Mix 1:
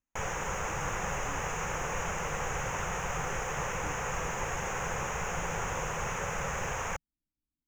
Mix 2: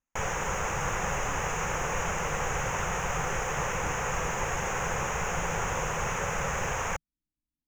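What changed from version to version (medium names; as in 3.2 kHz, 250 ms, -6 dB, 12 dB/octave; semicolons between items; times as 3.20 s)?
background +3.5 dB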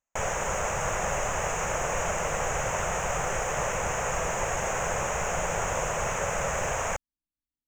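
speech -6.5 dB; master: add graphic EQ with 31 bands 160 Hz -3 dB, 630 Hz +10 dB, 8 kHz +10 dB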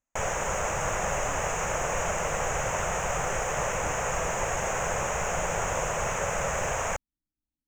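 speech +7.0 dB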